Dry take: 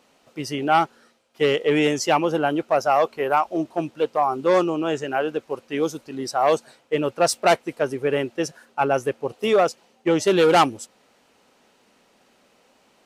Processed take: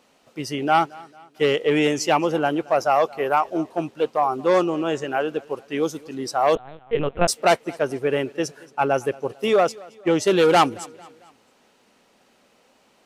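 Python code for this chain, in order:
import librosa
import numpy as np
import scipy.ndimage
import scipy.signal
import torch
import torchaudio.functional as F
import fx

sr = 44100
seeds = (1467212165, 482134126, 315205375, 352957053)

p1 = x + fx.echo_feedback(x, sr, ms=224, feedback_pct=47, wet_db=-23.0, dry=0)
y = fx.lpc_vocoder(p1, sr, seeds[0], excitation='pitch_kept', order=8, at=(6.55, 7.28))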